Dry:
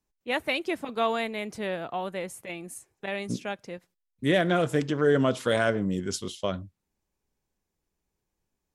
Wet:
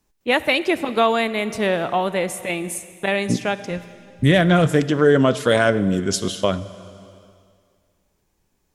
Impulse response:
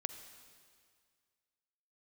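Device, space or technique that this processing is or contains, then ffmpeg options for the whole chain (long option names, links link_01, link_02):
ducked reverb: -filter_complex "[0:a]asplit=3[link_01][link_02][link_03];[link_01]afade=type=out:start_time=3.69:duration=0.02[link_04];[link_02]asubboost=boost=4.5:cutoff=150,afade=type=in:start_time=3.69:duration=0.02,afade=type=out:start_time=4.66:duration=0.02[link_05];[link_03]afade=type=in:start_time=4.66:duration=0.02[link_06];[link_04][link_05][link_06]amix=inputs=3:normalize=0,asplit=3[link_07][link_08][link_09];[1:a]atrim=start_sample=2205[link_10];[link_08][link_10]afir=irnorm=-1:irlink=0[link_11];[link_09]apad=whole_len=385450[link_12];[link_11][link_12]sidechaincompress=threshold=-27dB:ratio=8:attack=9.3:release=1110,volume=6dB[link_13];[link_07][link_13]amix=inputs=2:normalize=0,volume=4dB"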